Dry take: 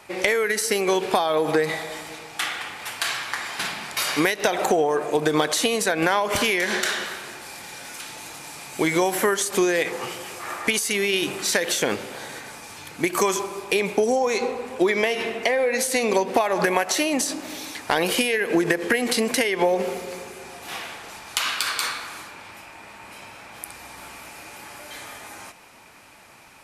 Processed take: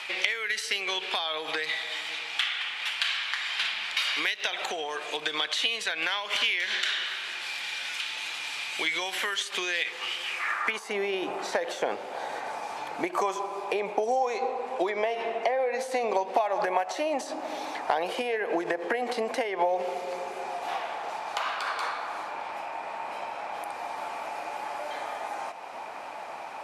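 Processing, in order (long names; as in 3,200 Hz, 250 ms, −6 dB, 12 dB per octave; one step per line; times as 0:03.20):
band-pass filter sweep 3,200 Hz → 750 Hz, 0:10.24–0:10.94
multiband upward and downward compressor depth 70%
level +4 dB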